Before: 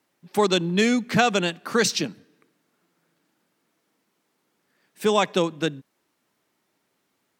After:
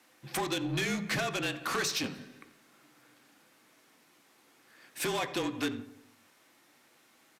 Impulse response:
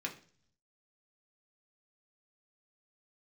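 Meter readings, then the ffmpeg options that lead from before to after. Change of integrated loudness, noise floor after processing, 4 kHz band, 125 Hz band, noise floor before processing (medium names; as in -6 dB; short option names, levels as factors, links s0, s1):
-10.0 dB, -65 dBFS, -8.0 dB, -8.5 dB, -74 dBFS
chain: -filter_complex "[0:a]equalizer=f=98:t=o:w=2.2:g=-13.5,bandreject=f=450:w=15,acompressor=threshold=0.0282:ratio=16,afreqshift=-36,aeval=exprs='0.0841*sin(PI/2*2*val(0)/0.0841)':c=same,aeval=exprs='0.0841*(cos(1*acos(clip(val(0)/0.0841,-1,1)))-cos(1*PI/2))+0.0119*(cos(5*acos(clip(val(0)/0.0841,-1,1)))-cos(5*PI/2))':c=same,asplit=2[s0][s1];[s1]adelay=87,lowpass=f=2000:p=1,volume=0.2,asplit=2[s2][s3];[s3]adelay=87,lowpass=f=2000:p=1,volume=0.53,asplit=2[s4][s5];[s5]adelay=87,lowpass=f=2000:p=1,volume=0.53,asplit=2[s6][s7];[s7]adelay=87,lowpass=f=2000:p=1,volume=0.53,asplit=2[s8][s9];[s9]adelay=87,lowpass=f=2000:p=1,volume=0.53[s10];[s0][s2][s4][s6][s8][s10]amix=inputs=6:normalize=0,asplit=2[s11][s12];[1:a]atrim=start_sample=2205[s13];[s12][s13]afir=irnorm=-1:irlink=0,volume=0.562[s14];[s11][s14]amix=inputs=2:normalize=0,aresample=32000,aresample=44100,volume=0.422"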